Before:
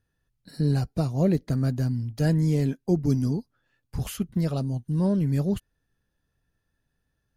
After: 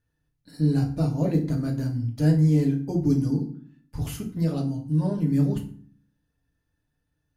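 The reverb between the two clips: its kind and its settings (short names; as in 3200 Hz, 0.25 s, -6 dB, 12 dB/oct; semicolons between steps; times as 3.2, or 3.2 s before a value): FDN reverb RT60 0.47 s, low-frequency decay 1.6×, high-frequency decay 0.75×, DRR 0 dB; gain -4.5 dB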